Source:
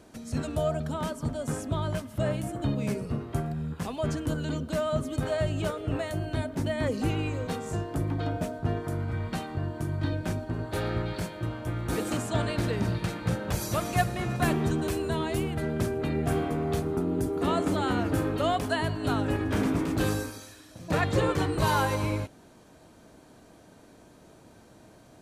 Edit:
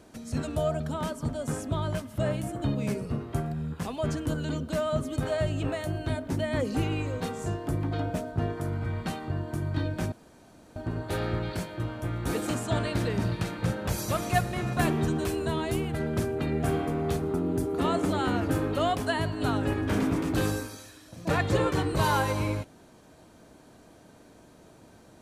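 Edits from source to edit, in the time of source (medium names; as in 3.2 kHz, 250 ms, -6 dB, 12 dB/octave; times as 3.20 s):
5.63–5.90 s: delete
10.39 s: insert room tone 0.64 s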